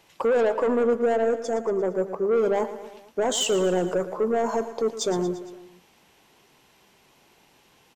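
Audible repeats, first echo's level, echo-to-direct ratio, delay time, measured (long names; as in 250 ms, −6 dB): 4, −13.0 dB, −11.0 dB, 115 ms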